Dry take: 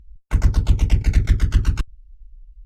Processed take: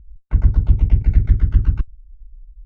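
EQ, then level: low-pass 2.1 kHz 12 dB/octave; bass shelf 290 Hz +10.5 dB; -7.5 dB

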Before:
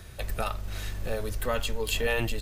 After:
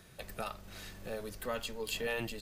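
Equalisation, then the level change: resonant low shelf 110 Hz -10 dB, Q 1.5; dynamic bell 4.7 kHz, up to +5 dB, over -57 dBFS, Q 7.3; -8.0 dB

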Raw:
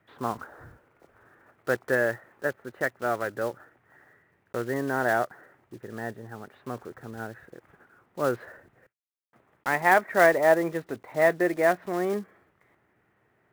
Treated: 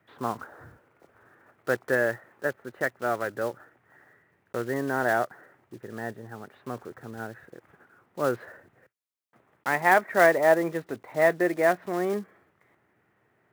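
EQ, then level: high-pass 75 Hz; 0.0 dB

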